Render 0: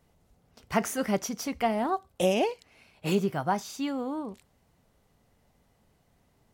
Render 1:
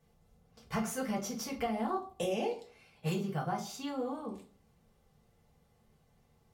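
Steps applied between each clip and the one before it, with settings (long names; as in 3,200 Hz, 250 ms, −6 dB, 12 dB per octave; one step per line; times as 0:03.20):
downward compressor, threshold −27 dBFS, peak gain reduction 8 dB
notch comb filter 320 Hz
convolution reverb RT60 0.45 s, pre-delay 4 ms, DRR −1 dB
level −5.5 dB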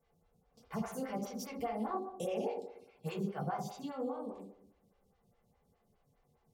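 on a send: feedback echo with a low-pass in the loop 61 ms, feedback 64%, low-pass 1,300 Hz, level −5 dB
on the sum: phaser with staggered stages 4.9 Hz
level −2.5 dB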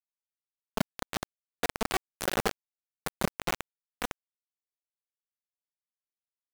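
bit reduction 5 bits
level +7 dB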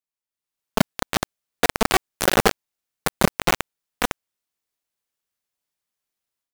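automatic gain control gain up to 11.5 dB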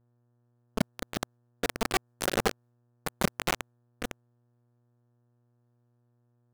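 rotating-speaker cabinet horn 8 Hz, later 0.85 Hz, at 0:02.00
hum with harmonics 120 Hz, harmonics 15, −63 dBFS −8 dB per octave
one half of a high-frequency compander decoder only
level −7 dB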